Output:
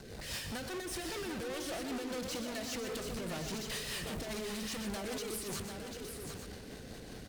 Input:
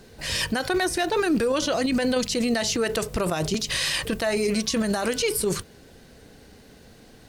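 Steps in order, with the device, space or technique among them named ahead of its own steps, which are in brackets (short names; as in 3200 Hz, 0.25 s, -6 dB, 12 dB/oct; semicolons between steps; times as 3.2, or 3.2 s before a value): overdriven rotary cabinet (tube stage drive 44 dB, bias 0.6; rotary speaker horn 5 Hz); tapped delay 0.125/0.744/0.863 s -9/-7/-10.5 dB; gain +6 dB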